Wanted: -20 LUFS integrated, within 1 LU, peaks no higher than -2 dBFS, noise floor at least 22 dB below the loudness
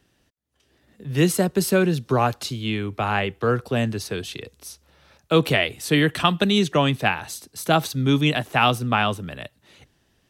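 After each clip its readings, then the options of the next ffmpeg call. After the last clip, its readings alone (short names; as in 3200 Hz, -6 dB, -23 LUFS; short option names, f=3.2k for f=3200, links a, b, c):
loudness -22.0 LUFS; peak -1.5 dBFS; loudness target -20.0 LUFS
-> -af "volume=2dB,alimiter=limit=-2dB:level=0:latency=1"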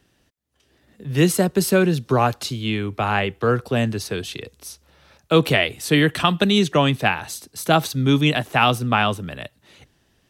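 loudness -20.0 LUFS; peak -2.0 dBFS; noise floor -64 dBFS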